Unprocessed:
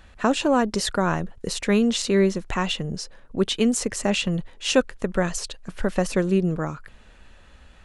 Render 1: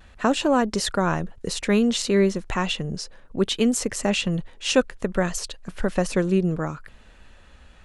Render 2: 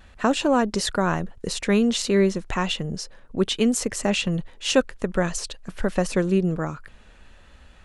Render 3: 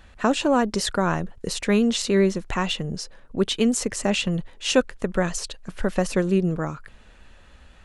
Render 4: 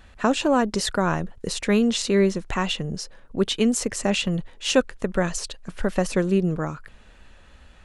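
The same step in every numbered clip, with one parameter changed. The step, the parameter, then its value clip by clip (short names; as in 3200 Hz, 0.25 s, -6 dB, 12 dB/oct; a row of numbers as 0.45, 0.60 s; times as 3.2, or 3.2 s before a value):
vibrato, rate: 0.61, 1.1, 10, 2.4 Hz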